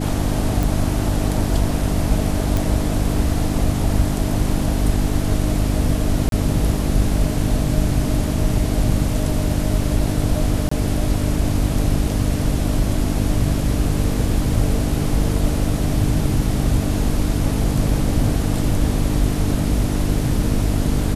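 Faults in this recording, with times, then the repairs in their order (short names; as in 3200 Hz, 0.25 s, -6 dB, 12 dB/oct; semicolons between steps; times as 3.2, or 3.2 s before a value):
hum 50 Hz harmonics 6 -23 dBFS
0.63 pop
2.57 pop
6.29–6.32 gap 32 ms
10.69–10.71 gap 24 ms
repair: de-click; de-hum 50 Hz, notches 6; interpolate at 6.29, 32 ms; interpolate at 10.69, 24 ms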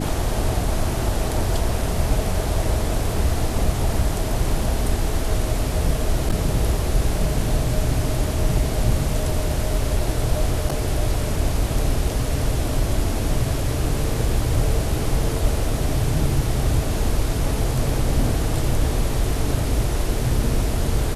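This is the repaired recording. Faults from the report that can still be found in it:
none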